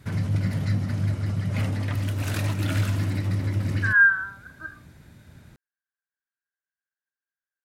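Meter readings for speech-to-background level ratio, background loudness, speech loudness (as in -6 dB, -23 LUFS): 7.0 dB, -26.5 LUFS, -19.5 LUFS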